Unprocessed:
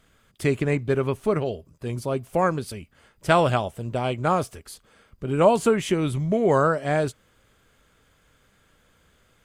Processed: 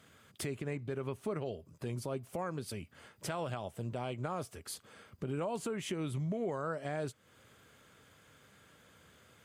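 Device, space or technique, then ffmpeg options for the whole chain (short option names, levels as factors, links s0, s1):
podcast mastering chain: -af "highpass=f=81:w=0.5412,highpass=f=81:w=1.3066,acompressor=threshold=0.0112:ratio=2.5,alimiter=level_in=1.58:limit=0.0631:level=0:latency=1:release=90,volume=0.631,volume=1.12" -ar 44100 -c:a libmp3lame -b:a 96k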